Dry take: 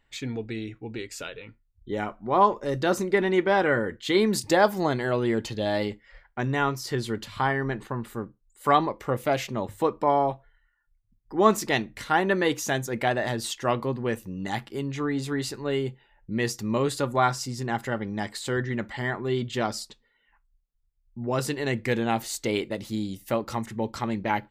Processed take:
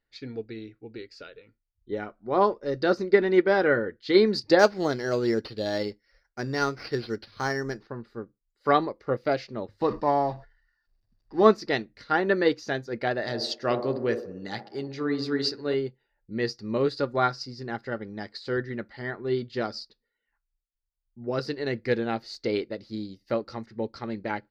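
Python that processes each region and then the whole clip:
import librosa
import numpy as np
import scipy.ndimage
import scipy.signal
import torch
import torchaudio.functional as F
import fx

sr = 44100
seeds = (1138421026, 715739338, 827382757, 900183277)

y = fx.chain(x, sr, fx.lowpass(hz=10000.0, slope=24),
    fx.high_shelf(hz=4300.0, db=5.5),
    fx.resample_bad(factor=6, down='none', up='hold'), at=(4.59, 7.87))
y = fx.chain(y, sr, fx.law_mismatch(coded='mu'),
    fx.comb(ms=1.1, depth=0.43),
    fx.sustainer(db_per_s=99.0), at=(9.81, 11.43))
y = fx.chain(y, sr, fx.highpass(hz=52.0, slope=12),
    fx.high_shelf(hz=3000.0, db=7.0),
    fx.echo_wet_bandpass(ms=63, feedback_pct=63, hz=490.0, wet_db=-5), at=(13.22, 15.74))
y = fx.curve_eq(y, sr, hz=(170.0, 470.0, 1000.0, 1400.0, 3300.0, 4700.0, 7700.0, 11000.0), db=(0, 6, -4, 4, -4, 11, -19, -21))
y = fx.upward_expand(y, sr, threshold_db=-42.0, expansion=1.5)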